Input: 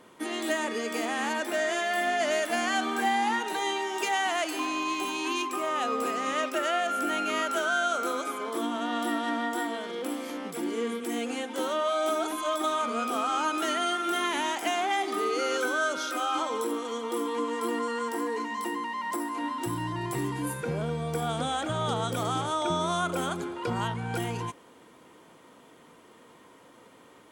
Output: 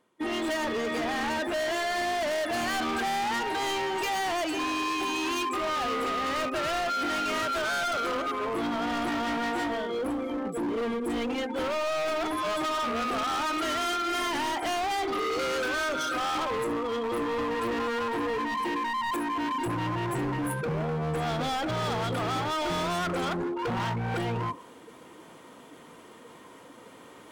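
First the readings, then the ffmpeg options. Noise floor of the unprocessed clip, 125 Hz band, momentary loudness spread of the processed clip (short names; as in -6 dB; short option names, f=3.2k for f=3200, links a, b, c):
-55 dBFS, +1.5 dB, 2 LU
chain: -af "afftdn=nr=24:nf=-36,areverse,acompressor=mode=upward:threshold=-37dB:ratio=2.5,areverse,volume=34dB,asoftclip=hard,volume=-34dB,volume=6.5dB"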